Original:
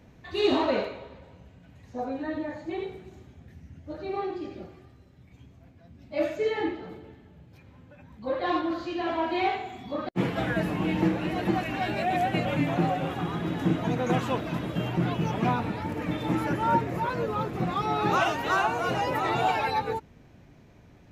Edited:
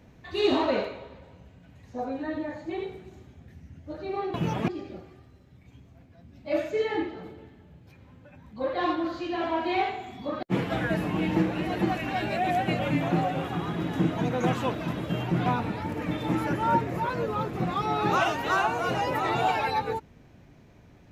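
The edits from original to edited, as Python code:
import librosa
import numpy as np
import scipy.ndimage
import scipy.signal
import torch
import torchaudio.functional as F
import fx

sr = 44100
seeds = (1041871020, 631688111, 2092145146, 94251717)

y = fx.edit(x, sr, fx.move(start_s=15.12, length_s=0.34, to_s=4.34), tone=tone)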